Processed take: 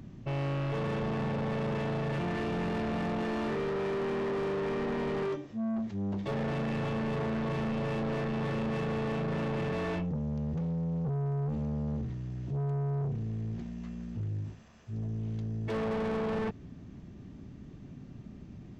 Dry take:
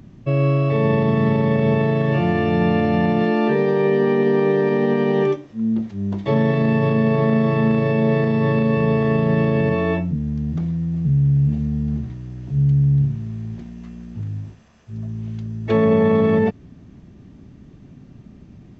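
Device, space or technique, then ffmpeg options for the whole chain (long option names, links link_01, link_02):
saturation between pre-emphasis and de-emphasis: -af "highshelf=frequency=2400:gain=10.5,asoftclip=type=tanh:threshold=-26.5dB,highshelf=frequency=2400:gain=-10.5,volume=-3.5dB"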